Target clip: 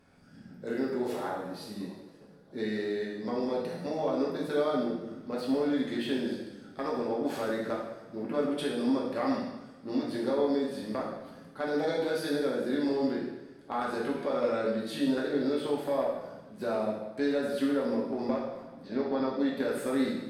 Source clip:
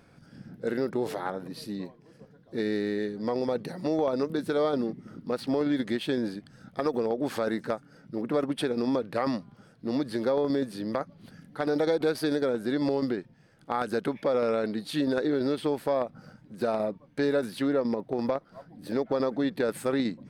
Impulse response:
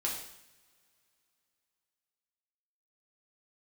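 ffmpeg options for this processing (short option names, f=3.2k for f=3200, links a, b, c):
-filter_complex "[0:a]asettb=1/sr,asplit=3[a][b][c];[a]atrim=end=18.824[d];[b]atrim=start=18.82:end=19.29,asetpts=PTS-STARTPTS,afade=t=in:d=0.004:c=qsin,afade=t=out:st=0.466:d=0.004:c=qsin,lowpass=f=5.1k:w=0.5412,lowpass=f=5.1k:w=1.3066[e];[c]atrim=start=19.286[f];[d][e]acrossfade=d=0.004:c1=hsin:c2=qsin[g];[g][f]acrossfade=d=0.004:c1=qsin:c2=hsin[h];[1:a]atrim=start_sample=2205,asetrate=33075,aresample=44100[i];[h][i]afir=irnorm=-1:irlink=0,volume=-8dB"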